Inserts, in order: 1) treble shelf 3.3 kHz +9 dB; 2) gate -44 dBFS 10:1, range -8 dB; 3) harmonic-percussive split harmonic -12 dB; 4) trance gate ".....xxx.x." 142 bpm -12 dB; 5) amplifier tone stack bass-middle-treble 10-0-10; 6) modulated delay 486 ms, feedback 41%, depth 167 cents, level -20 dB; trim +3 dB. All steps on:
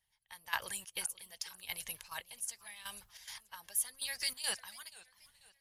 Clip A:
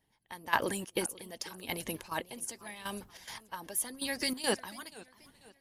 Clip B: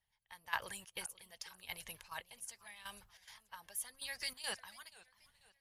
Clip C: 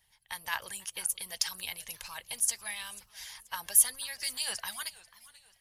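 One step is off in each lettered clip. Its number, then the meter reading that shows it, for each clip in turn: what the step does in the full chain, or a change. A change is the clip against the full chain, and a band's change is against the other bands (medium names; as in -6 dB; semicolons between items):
5, 250 Hz band +16.5 dB; 1, 8 kHz band -7.5 dB; 4, 8 kHz band +5.5 dB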